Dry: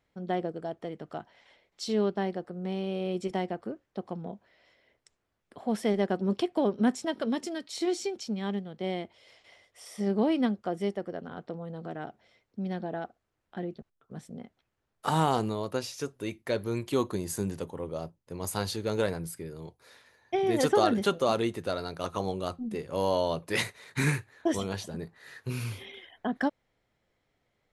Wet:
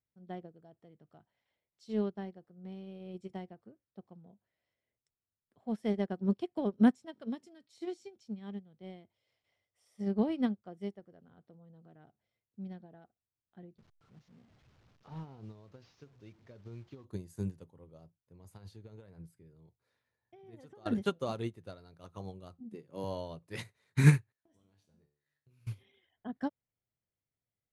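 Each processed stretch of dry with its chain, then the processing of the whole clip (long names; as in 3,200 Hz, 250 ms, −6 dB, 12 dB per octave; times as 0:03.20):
0:13.78–0:17.05: linear delta modulator 32 kbit/s, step −40 dBFS + downward compressor 10 to 1, threshold −29 dBFS + slack as between gear wheels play −53.5 dBFS
0:18.17–0:20.86: high-shelf EQ 4,100 Hz −6.5 dB + downward compressor 8 to 1, threshold −30 dBFS
0:22.60–0:23.04: high-pass filter 130 Hz 24 dB per octave + parametric band 330 Hz +5 dB 0.69 octaves
0:24.32–0:25.67: mu-law and A-law mismatch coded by A + downward compressor 12 to 1, threshold −35 dBFS + tuned comb filter 73 Hz, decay 0.6 s, mix 80%
whole clip: parametric band 110 Hz +11.5 dB 1.9 octaves; expander for the loud parts 2.5 to 1, over −31 dBFS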